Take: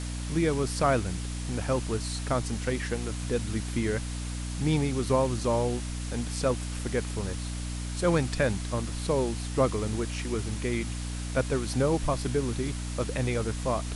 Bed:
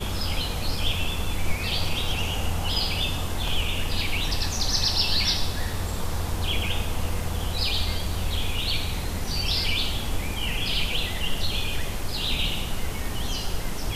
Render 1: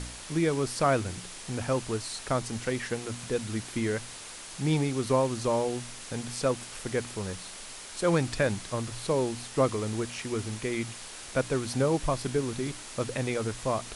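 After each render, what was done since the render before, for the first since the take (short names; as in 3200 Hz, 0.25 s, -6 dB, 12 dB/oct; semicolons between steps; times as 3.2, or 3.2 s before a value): de-hum 60 Hz, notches 5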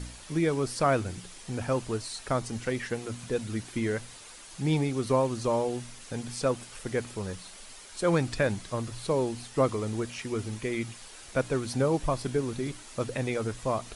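denoiser 7 dB, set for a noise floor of -44 dBFS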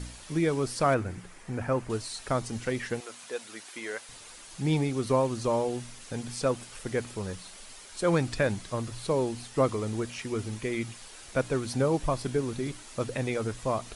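0.94–1.9 resonant high shelf 2600 Hz -7.5 dB, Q 1.5; 3–4.09 HPF 600 Hz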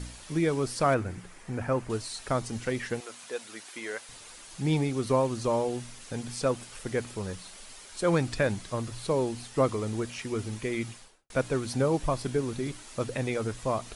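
10.88–11.3 studio fade out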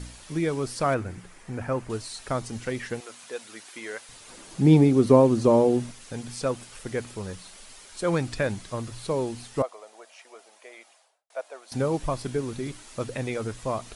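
4.28–5.92 bell 270 Hz +12 dB 2.8 oct; 9.62–11.72 ladder high-pass 590 Hz, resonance 65%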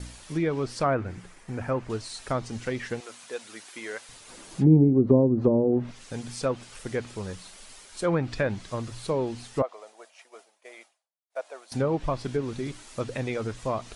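treble ducked by the level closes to 410 Hz, closed at -14.5 dBFS; expander -46 dBFS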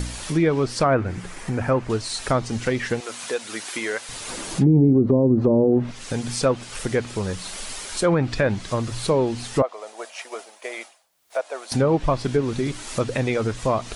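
in parallel at +2 dB: upward compressor, threshold -25 dBFS; on the sum: limiter -9 dBFS, peak gain reduction 8.5 dB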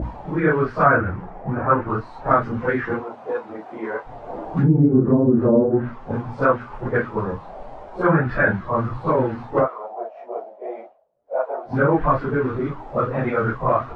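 phase scrambler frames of 0.1 s; envelope low-pass 550–1500 Hz up, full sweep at -18.5 dBFS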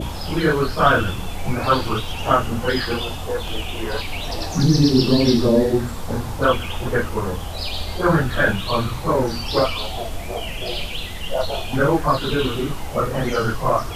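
add bed -2 dB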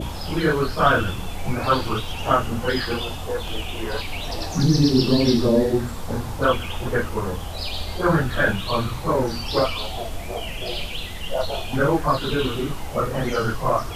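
gain -2 dB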